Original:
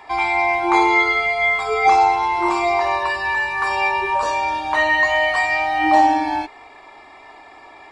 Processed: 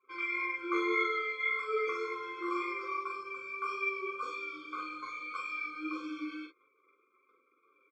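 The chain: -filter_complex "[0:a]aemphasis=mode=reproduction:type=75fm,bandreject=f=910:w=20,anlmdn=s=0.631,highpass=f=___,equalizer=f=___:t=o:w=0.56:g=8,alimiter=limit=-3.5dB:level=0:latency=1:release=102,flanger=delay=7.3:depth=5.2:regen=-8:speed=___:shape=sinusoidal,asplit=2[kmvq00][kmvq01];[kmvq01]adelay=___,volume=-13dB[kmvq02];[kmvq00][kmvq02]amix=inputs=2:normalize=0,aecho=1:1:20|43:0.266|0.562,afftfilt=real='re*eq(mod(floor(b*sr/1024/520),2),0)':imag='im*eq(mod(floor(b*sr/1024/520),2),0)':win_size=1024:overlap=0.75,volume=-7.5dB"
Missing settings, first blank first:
450, 660, 1.8, 16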